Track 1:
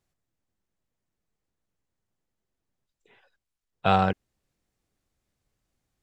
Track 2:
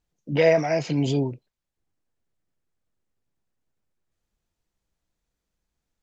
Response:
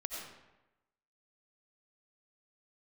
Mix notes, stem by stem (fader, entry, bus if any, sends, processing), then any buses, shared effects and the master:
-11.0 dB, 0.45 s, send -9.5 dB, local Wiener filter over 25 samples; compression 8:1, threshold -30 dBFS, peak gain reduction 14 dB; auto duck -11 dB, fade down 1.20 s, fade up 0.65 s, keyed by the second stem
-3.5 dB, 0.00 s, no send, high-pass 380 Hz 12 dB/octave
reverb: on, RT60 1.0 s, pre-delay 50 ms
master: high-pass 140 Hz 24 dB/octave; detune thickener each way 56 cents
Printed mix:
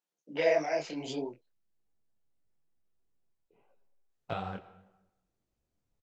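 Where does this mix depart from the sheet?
stem 1 -11.0 dB -> -2.0 dB; master: missing high-pass 140 Hz 24 dB/octave

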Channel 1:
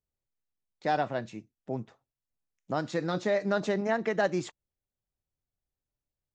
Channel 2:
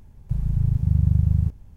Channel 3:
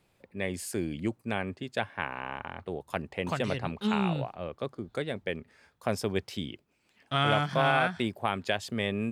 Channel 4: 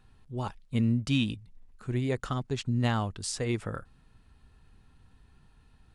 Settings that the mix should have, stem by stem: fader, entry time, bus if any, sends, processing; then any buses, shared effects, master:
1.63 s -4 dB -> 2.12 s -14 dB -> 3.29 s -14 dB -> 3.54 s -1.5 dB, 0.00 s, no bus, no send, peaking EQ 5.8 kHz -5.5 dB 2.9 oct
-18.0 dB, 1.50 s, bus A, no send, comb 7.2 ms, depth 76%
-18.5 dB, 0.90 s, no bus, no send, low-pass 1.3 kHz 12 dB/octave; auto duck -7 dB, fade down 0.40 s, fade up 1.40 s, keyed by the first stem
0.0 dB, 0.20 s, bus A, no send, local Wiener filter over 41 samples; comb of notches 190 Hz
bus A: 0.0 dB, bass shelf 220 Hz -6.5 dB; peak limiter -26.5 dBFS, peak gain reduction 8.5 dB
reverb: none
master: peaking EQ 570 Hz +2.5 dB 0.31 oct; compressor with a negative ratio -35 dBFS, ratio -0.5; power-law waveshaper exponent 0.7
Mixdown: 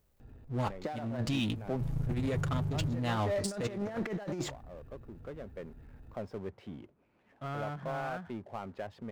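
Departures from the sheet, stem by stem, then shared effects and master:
stem 2 -18.0 dB -> -11.5 dB; stem 3: entry 0.90 s -> 0.30 s

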